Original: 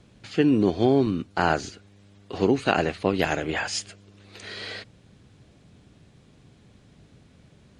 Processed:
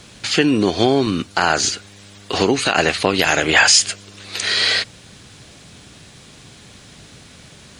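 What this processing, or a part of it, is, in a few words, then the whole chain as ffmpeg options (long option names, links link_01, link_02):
mastering chain: -af "equalizer=frequency=2500:width_type=o:width=1.7:gain=-3.5,acompressor=threshold=-24dB:ratio=2.5,tiltshelf=frequency=970:gain=-8.5,alimiter=level_in=17dB:limit=-1dB:release=50:level=0:latency=1,volume=-1dB"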